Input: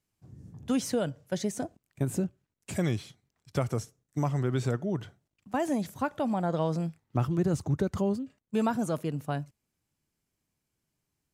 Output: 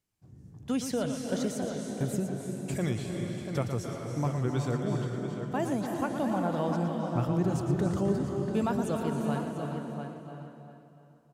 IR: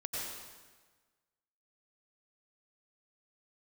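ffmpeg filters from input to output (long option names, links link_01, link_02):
-filter_complex "[0:a]asplit=2[link_01][link_02];[link_02]adelay=690,lowpass=frequency=3200:poles=1,volume=-7dB,asplit=2[link_03][link_04];[link_04]adelay=690,lowpass=frequency=3200:poles=1,volume=0.17,asplit=2[link_05][link_06];[link_06]adelay=690,lowpass=frequency=3200:poles=1,volume=0.17[link_07];[link_01][link_03][link_05][link_07]amix=inputs=4:normalize=0,asplit=2[link_08][link_09];[1:a]atrim=start_sample=2205,asetrate=26019,aresample=44100,adelay=116[link_10];[link_09][link_10]afir=irnorm=-1:irlink=0,volume=-8.5dB[link_11];[link_08][link_11]amix=inputs=2:normalize=0,volume=-2.5dB"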